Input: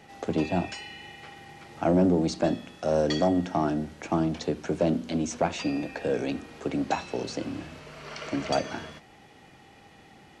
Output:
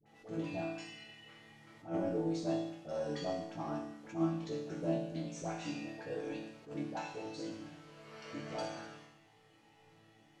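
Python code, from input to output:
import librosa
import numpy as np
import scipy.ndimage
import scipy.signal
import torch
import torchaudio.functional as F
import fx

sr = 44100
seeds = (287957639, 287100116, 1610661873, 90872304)

y = fx.resonator_bank(x, sr, root=45, chord='sus4', decay_s=0.84)
y = fx.dispersion(y, sr, late='highs', ms=62.0, hz=750.0)
y = fx.attack_slew(y, sr, db_per_s=190.0)
y = F.gain(torch.from_numpy(y), 7.5).numpy()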